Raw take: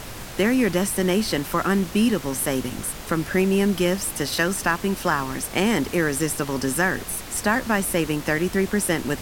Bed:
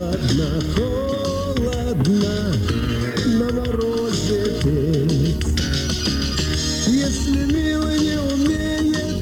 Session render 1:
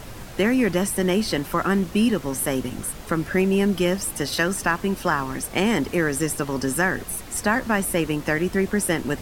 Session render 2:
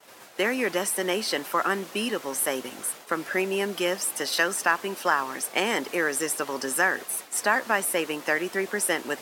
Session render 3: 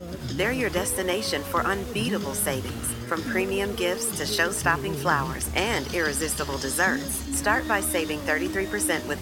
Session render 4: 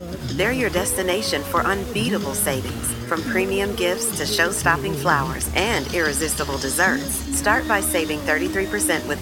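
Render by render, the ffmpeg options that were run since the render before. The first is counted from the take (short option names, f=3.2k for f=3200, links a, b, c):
-af "afftdn=nr=6:nf=-37"
-af "agate=range=-33dB:threshold=-31dB:ratio=3:detection=peak,highpass=470"
-filter_complex "[1:a]volume=-13.5dB[a];[0:a][a]amix=inputs=2:normalize=0"
-af "volume=4.5dB"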